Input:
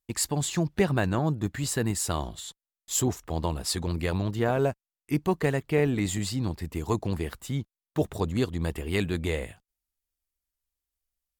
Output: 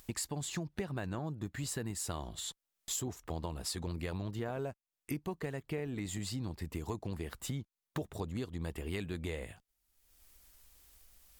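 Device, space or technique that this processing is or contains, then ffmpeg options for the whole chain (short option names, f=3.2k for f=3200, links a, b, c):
upward and downward compression: -af "acompressor=mode=upward:threshold=-46dB:ratio=2.5,acompressor=threshold=-40dB:ratio=6,volume=3.5dB"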